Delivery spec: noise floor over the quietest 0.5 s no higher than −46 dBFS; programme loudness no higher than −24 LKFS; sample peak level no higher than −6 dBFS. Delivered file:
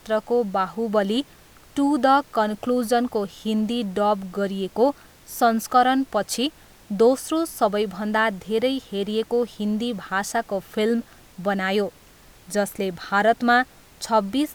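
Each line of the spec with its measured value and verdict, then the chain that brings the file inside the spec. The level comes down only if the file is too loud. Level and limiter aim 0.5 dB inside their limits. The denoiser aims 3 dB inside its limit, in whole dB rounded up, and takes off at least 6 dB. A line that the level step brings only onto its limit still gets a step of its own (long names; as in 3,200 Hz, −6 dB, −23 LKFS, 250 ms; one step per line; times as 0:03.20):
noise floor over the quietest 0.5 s −50 dBFS: in spec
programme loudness −23.0 LKFS: out of spec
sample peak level −5.5 dBFS: out of spec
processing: level −1.5 dB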